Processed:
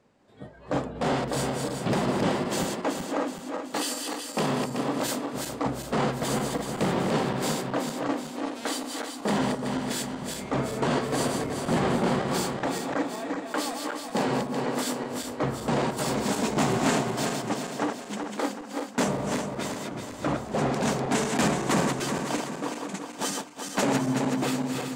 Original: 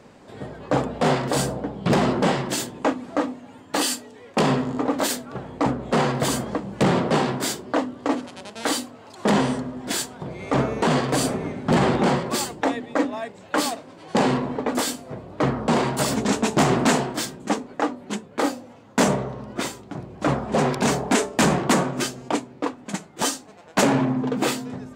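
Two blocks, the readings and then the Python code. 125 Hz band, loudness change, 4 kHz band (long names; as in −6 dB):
−5.0 dB, −4.5 dB, −4.5 dB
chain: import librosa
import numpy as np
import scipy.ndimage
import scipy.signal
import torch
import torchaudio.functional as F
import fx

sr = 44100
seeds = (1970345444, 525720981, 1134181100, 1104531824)

y = fx.reverse_delay_fb(x, sr, ms=188, feedback_pct=71, wet_db=-4)
y = fx.noise_reduce_blind(y, sr, reduce_db=9)
y = y * librosa.db_to_amplitude(-7.0)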